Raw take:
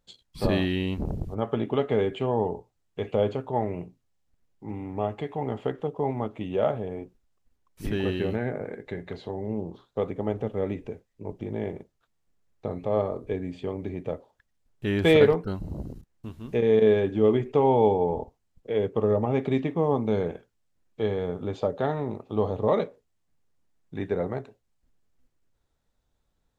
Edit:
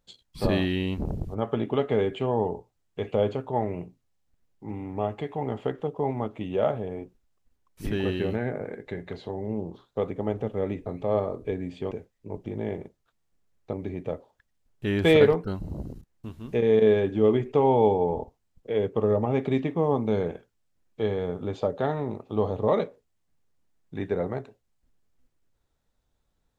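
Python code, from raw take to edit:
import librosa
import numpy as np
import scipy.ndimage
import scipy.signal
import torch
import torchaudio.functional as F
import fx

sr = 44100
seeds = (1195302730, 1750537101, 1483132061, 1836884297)

y = fx.edit(x, sr, fx.move(start_s=12.68, length_s=1.05, to_s=10.86), tone=tone)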